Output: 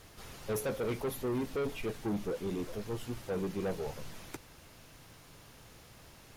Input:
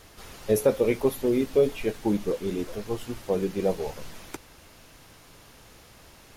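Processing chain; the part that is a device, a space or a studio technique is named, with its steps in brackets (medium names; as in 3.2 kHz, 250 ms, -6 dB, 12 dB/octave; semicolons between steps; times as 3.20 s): open-reel tape (saturation -26 dBFS, distortion -7 dB; peaking EQ 130 Hz +5 dB 0.91 oct; white noise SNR 37 dB); trim -4.5 dB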